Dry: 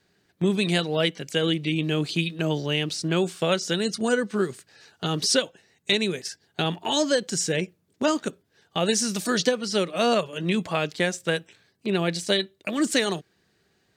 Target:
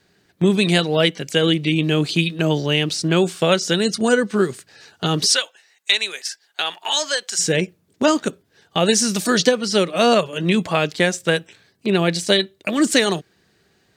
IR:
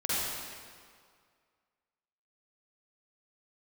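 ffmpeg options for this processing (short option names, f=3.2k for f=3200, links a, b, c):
-filter_complex "[0:a]asettb=1/sr,asplit=3[a][b][c];[a]atrim=end=5.304[d];[b]atrim=start=5.3:end=7.39,asetpts=PTS-STARTPTS,afade=t=in:d=0.004:c=qsin,afade=t=out:st=2.086:d=0.004:c=qsin,highpass=1k[e];[c]atrim=start=7.386[f];[d][e]acrossfade=d=0.004:c1=hsin:c2=qsin[g];[g][f]acrossfade=d=0.004:c1=qsin:c2=hsin,volume=6.5dB"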